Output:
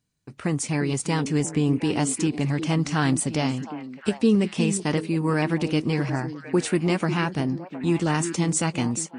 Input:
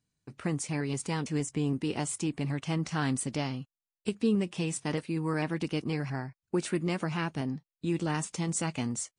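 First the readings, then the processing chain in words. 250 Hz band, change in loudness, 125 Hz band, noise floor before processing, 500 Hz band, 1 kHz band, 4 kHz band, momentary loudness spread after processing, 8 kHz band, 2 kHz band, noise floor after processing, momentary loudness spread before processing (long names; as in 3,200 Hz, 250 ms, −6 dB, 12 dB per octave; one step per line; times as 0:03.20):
+8.0 dB, +8.0 dB, +7.5 dB, below −85 dBFS, +8.0 dB, +8.0 dB, +7.5 dB, 5 LU, +7.5 dB, +7.5 dB, −46 dBFS, 6 LU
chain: echo through a band-pass that steps 357 ms, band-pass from 270 Hz, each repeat 1.4 octaves, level −6.5 dB
automatic gain control gain up to 3.5 dB
level +4 dB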